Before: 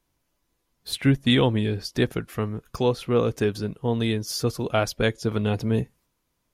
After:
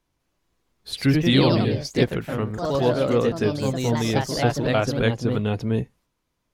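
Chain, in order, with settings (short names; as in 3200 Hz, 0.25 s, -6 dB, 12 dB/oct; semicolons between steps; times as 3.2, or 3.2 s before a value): echoes that change speed 0.199 s, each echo +2 st, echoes 3; high shelf 10000 Hz -11.5 dB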